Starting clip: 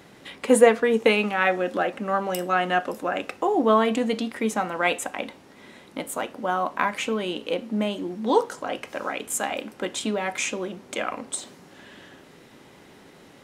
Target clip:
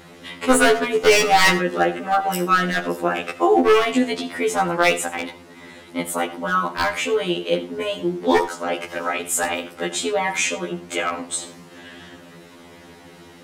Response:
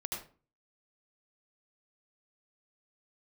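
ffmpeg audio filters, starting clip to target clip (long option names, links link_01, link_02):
-filter_complex "[0:a]asettb=1/sr,asplit=3[link_01][link_02][link_03];[link_01]atrim=end=1.124[link_04];[link_02]atrim=start=1.12:end=1.58,asetpts=PTS-STARTPTS,afade=type=in:duration=0.004:curve=qsin,afade=type=out:start_time=0.456:duration=0.004:curve=qsin,acontrast=65[link_05];[link_03]atrim=start=1.576[link_06];[link_04][link_05]acrossfade=duration=0.004:curve1=hsin:curve2=qsin[link_07];[link_07][link_06]acrossfade=duration=0.004:curve1=qsin:curve2=hsin,aeval=exprs='0.211*(abs(mod(val(0)/0.211+3,4)-2)-1)':channel_layout=same,asplit=2[link_08][link_09];[1:a]atrim=start_sample=2205,afade=type=out:start_time=0.17:duration=0.01,atrim=end_sample=7938[link_10];[link_09][link_10]afir=irnorm=-1:irlink=0,volume=-12dB[link_11];[link_08][link_11]amix=inputs=2:normalize=0,afftfilt=real='re*2*eq(mod(b,4),0)':imag='im*2*eq(mod(b,4),0)':win_size=2048:overlap=0.75,volume=6.5dB"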